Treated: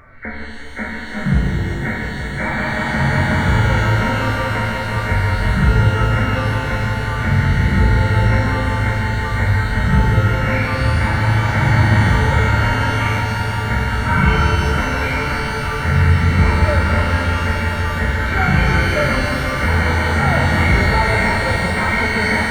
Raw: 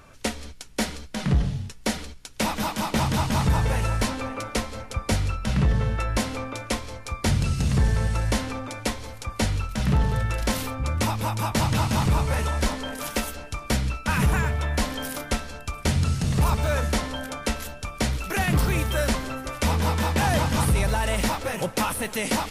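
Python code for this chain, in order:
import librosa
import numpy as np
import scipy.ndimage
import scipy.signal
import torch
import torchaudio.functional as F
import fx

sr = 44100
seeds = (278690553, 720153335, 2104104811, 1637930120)

y = fx.freq_compress(x, sr, knee_hz=1300.0, ratio=4.0)
y = fx.level_steps(y, sr, step_db=23, at=(13.16, 13.7))
y = fx.echo_swell(y, sr, ms=174, loudest=5, wet_db=-14.5)
y = fx.hpss(y, sr, part='percussive', gain_db=-15)
y = fx.rev_shimmer(y, sr, seeds[0], rt60_s=2.3, semitones=12, shimmer_db=-8, drr_db=1.5)
y = F.gain(torch.from_numpy(y), 7.5).numpy()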